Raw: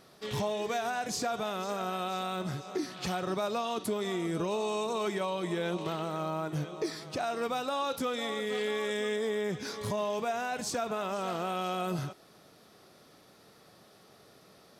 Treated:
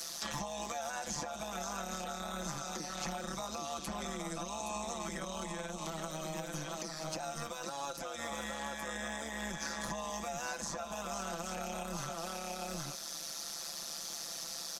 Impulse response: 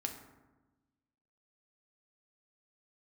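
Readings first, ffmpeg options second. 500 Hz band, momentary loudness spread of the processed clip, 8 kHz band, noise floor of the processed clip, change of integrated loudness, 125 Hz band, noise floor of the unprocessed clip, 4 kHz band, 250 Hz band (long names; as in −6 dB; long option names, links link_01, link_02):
−10.0 dB, 2 LU, +4.5 dB, −44 dBFS, −6.5 dB, −7.0 dB, −59 dBFS, −2.5 dB, −7.5 dB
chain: -filter_complex "[0:a]bandreject=frequency=460:width=14,aecho=1:1:5.9:0.96,acrossover=split=130|2100[link_01][link_02][link_03];[link_03]acompressor=threshold=-54dB:ratio=6[link_04];[link_01][link_02][link_04]amix=inputs=3:normalize=0,bass=frequency=250:gain=-9,treble=frequency=4000:gain=15,asplit=2[link_05][link_06];[link_06]aecho=0:1:817:0.447[link_07];[link_05][link_07]amix=inputs=2:normalize=0,tremolo=f=150:d=0.788,acrossover=split=200|440|2200|5400[link_08][link_09][link_10][link_11][link_12];[link_08]acompressor=threshold=-45dB:ratio=4[link_13];[link_09]acompressor=threshold=-50dB:ratio=4[link_14];[link_10]acompressor=threshold=-44dB:ratio=4[link_15];[link_11]acompressor=threshold=-56dB:ratio=4[link_16];[link_12]acompressor=threshold=-59dB:ratio=4[link_17];[link_13][link_14][link_15][link_16][link_17]amix=inputs=5:normalize=0,alimiter=level_in=14dB:limit=-24dB:level=0:latency=1:release=429,volume=-14dB,equalizer=frequency=100:width_type=o:width=0.67:gain=-7,equalizer=frequency=400:width_type=o:width=0.67:gain=-9,equalizer=frequency=6300:width_type=o:width=0.67:gain=10,volume=9.5dB"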